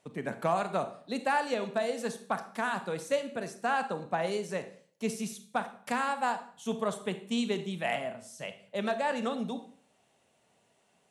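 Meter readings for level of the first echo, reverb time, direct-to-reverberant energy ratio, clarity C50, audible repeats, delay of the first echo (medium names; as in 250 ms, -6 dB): no echo, 0.50 s, 9.5 dB, 12.0 dB, no echo, no echo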